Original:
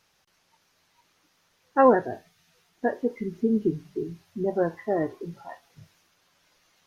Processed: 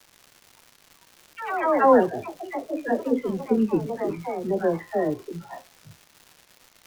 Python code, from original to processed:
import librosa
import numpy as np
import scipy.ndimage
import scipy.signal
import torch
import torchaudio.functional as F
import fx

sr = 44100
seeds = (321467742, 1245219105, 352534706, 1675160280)

y = fx.echo_pitch(x, sr, ms=102, semitones=3, count=3, db_per_echo=-6.0)
y = fx.dispersion(y, sr, late='lows', ms=87.0, hz=820.0)
y = fx.dmg_crackle(y, sr, seeds[0], per_s=300.0, level_db=-39.0)
y = F.gain(torch.from_numpy(y), 1.5).numpy()